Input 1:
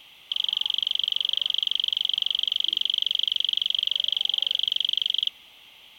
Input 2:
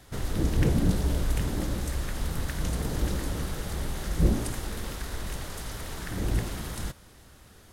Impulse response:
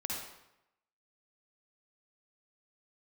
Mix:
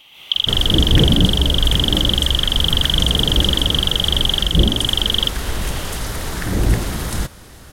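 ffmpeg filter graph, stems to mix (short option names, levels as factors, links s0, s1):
-filter_complex "[0:a]acompressor=threshold=0.0562:ratio=6,volume=1.26[s0];[1:a]adelay=350,volume=1.12[s1];[s0][s1]amix=inputs=2:normalize=0,dynaudnorm=f=110:g=3:m=3.55"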